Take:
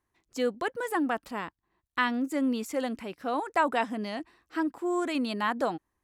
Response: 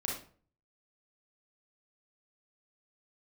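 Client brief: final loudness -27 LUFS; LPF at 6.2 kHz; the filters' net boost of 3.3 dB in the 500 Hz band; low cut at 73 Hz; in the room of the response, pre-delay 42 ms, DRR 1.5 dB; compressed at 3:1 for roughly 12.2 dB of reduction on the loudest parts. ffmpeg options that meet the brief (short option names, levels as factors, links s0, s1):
-filter_complex "[0:a]highpass=73,lowpass=6200,equalizer=f=500:t=o:g=4,acompressor=threshold=0.0141:ratio=3,asplit=2[s0][s1];[1:a]atrim=start_sample=2205,adelay=42[s2];[s1][s2]afir=irnorm=-1:irlink=0,volume=0.596[s3];[s0][s3]amix=inputs=2:normalize=0,volume=2.82"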